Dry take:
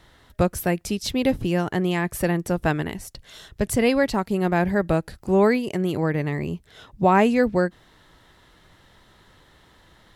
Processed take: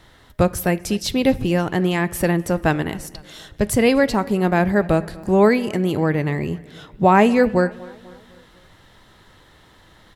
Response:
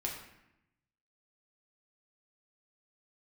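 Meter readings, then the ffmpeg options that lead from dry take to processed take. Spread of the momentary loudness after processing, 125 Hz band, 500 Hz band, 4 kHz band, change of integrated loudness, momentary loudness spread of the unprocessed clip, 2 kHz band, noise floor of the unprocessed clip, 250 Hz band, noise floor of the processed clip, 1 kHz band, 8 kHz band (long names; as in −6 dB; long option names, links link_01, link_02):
13 LU, +3.5 dB, +3.5 dB, +3.5 dB, +3.5 dB, 10 LU, +3.5 dB, −56 dBFS, +3.5 dB, −51 dBFS, +4.0 dB, +3.5 dB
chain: -filter_complex "[0:a]asplit=2[link_01][link_02];[link_02]adelay=248,lowpass=frequency=4000:poles=1,volume=-22dB,asplit=2[link_03][link_04];[link_04]adelay=248,lowpass=frequency=4000:poles=1,volume=0.53,asplit=2[link_05][link_06];[link_06]adelay=248,lowpass=frequency=4000:poles=1,volume=0.53,asplit=2[link_07][link_08];[link_08]adelay=248,lowpass=frequency=4000:poles=1,volume=0.53[link_09];[link_01][link_03][link_05][link_07][link_09]amix=inputs=5:normalize=0,asplit=2[link_10][link_11];[1:a]atrim=start_sample=2205[link_12];[link_11][link_12]afir=irnorm=-1:irlink=0,volume=-15dB[link_13];[link_10][link_13]amix=inputs=2:normalize=0,volume=2.5dB"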